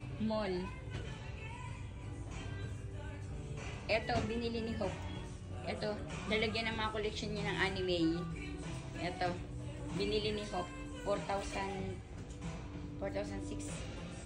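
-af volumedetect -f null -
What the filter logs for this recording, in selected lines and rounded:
mean_volume: -39.1 dB
max_volume: -18.6 dB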